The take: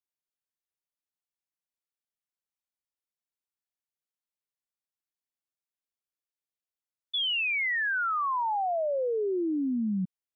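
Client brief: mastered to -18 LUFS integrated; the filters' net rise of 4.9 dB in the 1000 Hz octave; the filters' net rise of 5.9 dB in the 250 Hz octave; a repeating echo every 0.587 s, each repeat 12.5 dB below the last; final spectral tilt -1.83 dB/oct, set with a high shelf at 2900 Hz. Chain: bell 250 Hz +7 dB; bell 1000 Hz +5 dB; high shelf 2900 Hz +6 dB; feedback echo 0.587 s, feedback 24%, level -12.5 dB; gain +5.5 dB

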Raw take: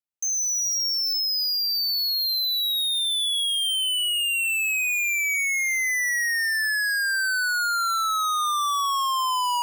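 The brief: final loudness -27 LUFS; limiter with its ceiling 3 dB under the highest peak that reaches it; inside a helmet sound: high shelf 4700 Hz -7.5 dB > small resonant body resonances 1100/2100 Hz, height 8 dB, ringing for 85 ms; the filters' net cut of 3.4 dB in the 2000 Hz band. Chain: bell 2000 Hz -3 dB; limiter -26 dBFS; high shelf 4700 Hz -7.5 dB; small resonant body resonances 1100/2100 Hz, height 8 dB, ringing for 85 ms; gain +0.5 dB

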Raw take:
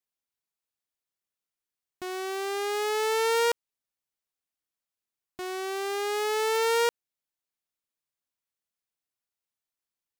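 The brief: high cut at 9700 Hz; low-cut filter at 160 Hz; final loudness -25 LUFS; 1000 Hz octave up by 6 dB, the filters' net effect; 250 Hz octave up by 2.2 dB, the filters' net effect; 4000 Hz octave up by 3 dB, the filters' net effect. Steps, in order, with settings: HPF 160 Hz; LPF 9700 Hz; bell 250 Hz +4 dB; bell 1000 Hz +7 dB; bell 4000 Hz +3.5 dB; gain -0.5 dB

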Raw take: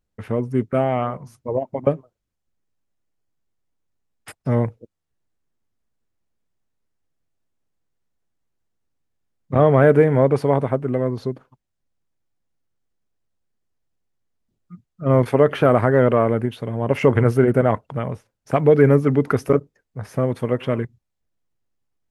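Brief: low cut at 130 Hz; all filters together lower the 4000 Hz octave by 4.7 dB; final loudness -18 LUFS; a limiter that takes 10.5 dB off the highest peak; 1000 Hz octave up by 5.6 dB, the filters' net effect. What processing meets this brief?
HPF 130 Hz; bell 1000 Hz +8 dB; bell 4000 Hz -8 dB; gain +5.5 dB; limiter -5.5 dBFS

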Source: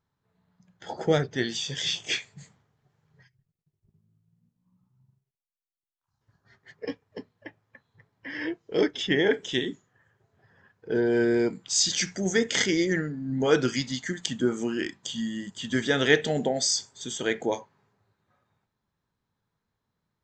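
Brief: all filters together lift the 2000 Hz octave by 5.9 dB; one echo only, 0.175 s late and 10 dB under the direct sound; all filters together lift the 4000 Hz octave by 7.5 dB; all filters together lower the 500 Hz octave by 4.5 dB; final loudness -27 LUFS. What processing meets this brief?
bell 500 Hz -6 dB; bell 2000 Hz +5.5 dB; bell 4000 Hz +8 dB; echo 0.175 s -10 dB; gain -4 dB

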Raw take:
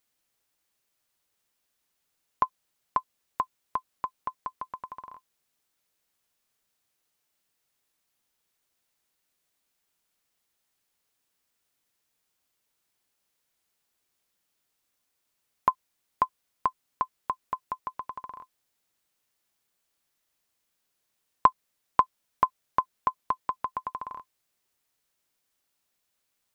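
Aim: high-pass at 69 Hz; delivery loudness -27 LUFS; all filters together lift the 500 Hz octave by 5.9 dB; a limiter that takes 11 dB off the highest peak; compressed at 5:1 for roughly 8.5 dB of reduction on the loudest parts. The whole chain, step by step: HPF 69 Hz; bell 500 Hz +7.5 dB; compressor 5:1, threshold -25 dBFS; gain +13.5 dB; limiter -4 dBFS

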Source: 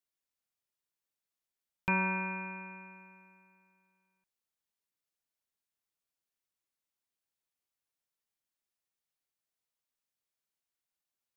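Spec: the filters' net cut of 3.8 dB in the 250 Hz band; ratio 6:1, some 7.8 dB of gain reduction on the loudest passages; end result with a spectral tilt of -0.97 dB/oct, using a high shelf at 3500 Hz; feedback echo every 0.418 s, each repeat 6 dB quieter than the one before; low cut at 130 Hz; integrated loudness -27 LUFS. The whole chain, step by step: HPF 130 Hz; bell 250 Hz -5 dB; high shelf 3500 Hz -8.5 dB; compressor 6:1, threshold -36 dBFS; feedback echo 0.418 s, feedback 50%, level -6 dB; gain +15.5 dB

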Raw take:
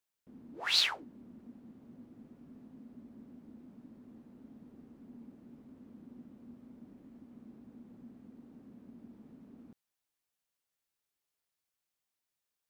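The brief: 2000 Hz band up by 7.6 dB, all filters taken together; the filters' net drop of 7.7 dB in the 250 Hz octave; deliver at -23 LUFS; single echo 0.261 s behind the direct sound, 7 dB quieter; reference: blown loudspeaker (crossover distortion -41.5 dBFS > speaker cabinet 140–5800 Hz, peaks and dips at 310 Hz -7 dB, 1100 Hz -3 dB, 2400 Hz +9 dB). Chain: bell 250 Hz -6 dB; bell 2000 Hz +4 dB; echo 0.261 s -7 dB; crossover distortion -41.5 dBFS; speaker cabinet 140–5800 Hz, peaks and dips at 310 Hz -7 dB, 1100 Hz -3 dB, 2400 Hz +9 dB; gain +5 dB

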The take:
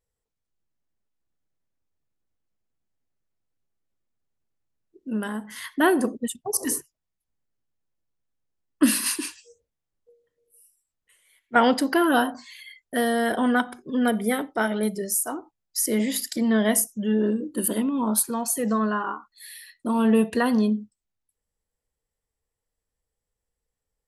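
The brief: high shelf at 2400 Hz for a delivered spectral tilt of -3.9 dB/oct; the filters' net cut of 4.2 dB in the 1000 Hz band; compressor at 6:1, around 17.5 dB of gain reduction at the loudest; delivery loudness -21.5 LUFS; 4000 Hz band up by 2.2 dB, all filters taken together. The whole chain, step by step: bell 1000 Hz -5.5 dB; high shelf 2400 Hz -5.5 dB; bell 4000 Hz +8.5 dB; compressor 6:1, threshold -33 dBFS; gain +15 dB

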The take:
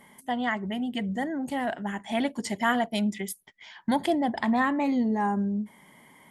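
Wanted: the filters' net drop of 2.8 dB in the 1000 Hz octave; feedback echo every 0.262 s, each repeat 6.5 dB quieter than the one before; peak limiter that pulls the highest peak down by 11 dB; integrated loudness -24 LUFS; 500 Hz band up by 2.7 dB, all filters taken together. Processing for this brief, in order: bell 500 Hz +6.5 dB; bell 1000 Hz -7.5 dB; limiter -25 dBFS; feedback echo 0.262 s, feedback 47%, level -6.5 dB; gain +8 dB

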